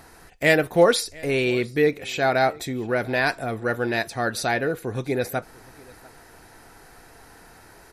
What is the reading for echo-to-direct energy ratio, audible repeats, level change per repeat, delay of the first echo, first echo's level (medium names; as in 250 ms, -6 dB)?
-24.0 dB, 1, no regular repeats, 695 ms, -24.0 dB